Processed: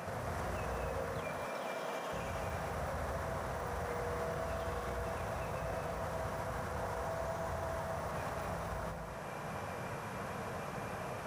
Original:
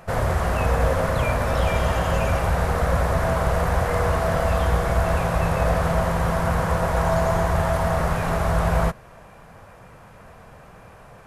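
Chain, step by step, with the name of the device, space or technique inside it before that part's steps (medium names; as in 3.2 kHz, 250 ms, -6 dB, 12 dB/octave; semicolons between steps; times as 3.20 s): broadcast voice chain (high-pass 100 Hz 12 dB/octave; de-esser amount 75%; compression, threshold -38 dBFS, peak gain reduction 18 dB; peaking EQ 5.8 kHz +4.5 dB 0.2 oct; peak limiter -35.5 dBFS, peak gain reduction 8 dB); 1.20–2.13 s: high-pass 200 Hz 24 dB/octave; gated-style reverb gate 290 ms rising, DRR 2.5 dB; trim +3 dB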